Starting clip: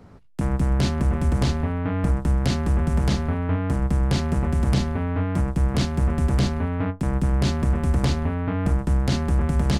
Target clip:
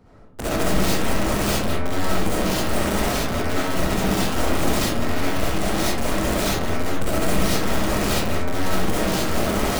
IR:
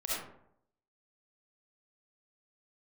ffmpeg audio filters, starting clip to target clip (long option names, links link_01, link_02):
-filter_complex "[0:a]aeval=exprs='(mod(7.94*val(0)+1,2)-1)/7.94':channel_layout=same,aeval=exprs='0.133*(cos(1*acos(clip(val(0)/0.133,-1,1)))-cos(1*PI/2))+0.00668*(cos(8*acos(clip(val(0)/0.133,-1,1)))-cos(8*PI/2))':channel_layout=same[link_01];[1:a]atrim=start_sample=2205[link_02];[link_01][link_02]afir=irnorm=-1:irlink=0,volume=-3dB"